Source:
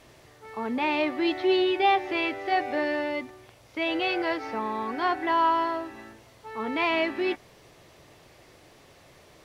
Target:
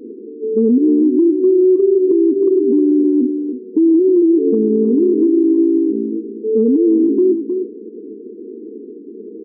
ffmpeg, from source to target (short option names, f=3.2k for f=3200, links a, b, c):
-af "afftfilt=real='re*between(b*sr/4096,200,480)':imag='im*between(b*sr/4096,200,480)':win_size=4096:overlap=0.75,acompressor=threshold=-37dB:ratio=5,aecho=1:1:313:0.316,alimiter=level_in=33.5dB:limit=-1dB:release=50:level=0:latency=1,volume=-5.5dB"